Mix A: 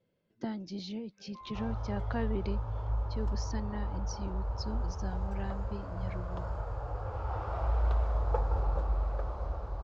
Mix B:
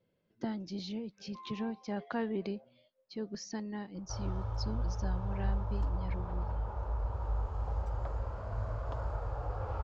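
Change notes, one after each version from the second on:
background: entry +2.55 s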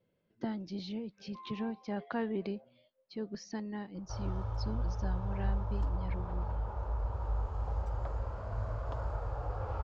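speech: add LPF 4600 Hz 12 dB/oct

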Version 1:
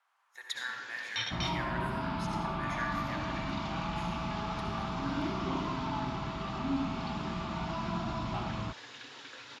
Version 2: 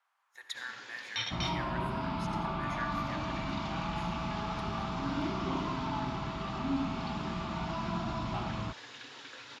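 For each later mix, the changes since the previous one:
speech: send -8.5 dB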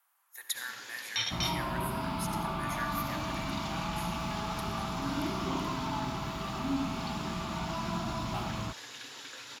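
master: remove air absorption 130 m

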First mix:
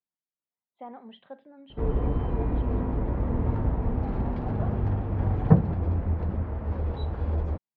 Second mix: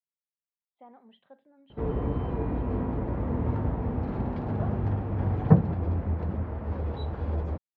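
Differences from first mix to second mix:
speech -9.5 dB; background: add HPF 71 Hz

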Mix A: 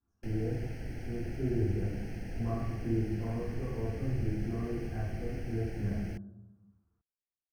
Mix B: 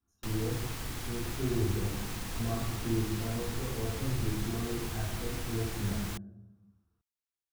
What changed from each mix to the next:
background: remove Butterworth band-stop 1100 Hz, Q 1.2; master: remove running mean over 12 samples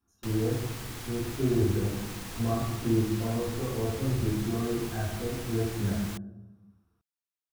speech +7.0 dB; master: add low shelf 97 Hz -6.5 dB

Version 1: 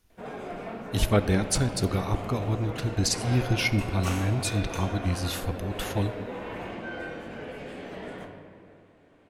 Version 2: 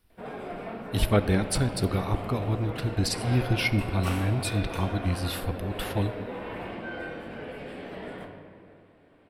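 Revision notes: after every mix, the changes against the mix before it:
master: add bell 6500 Hz -14.5 dB 0.3 oct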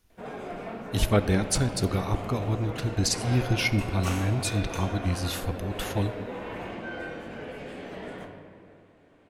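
master: add bell 6500 Hz +14.5 dB 0.3 oct

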